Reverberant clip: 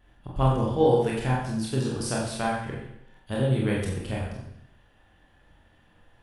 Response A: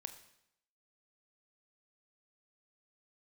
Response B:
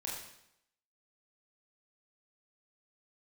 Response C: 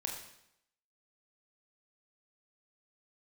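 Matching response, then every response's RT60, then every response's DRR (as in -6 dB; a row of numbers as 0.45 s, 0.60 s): B; 0.75 s, 0.80 s, 0.80 s; 8.0 dB, -4.5 dB, 0.5 dB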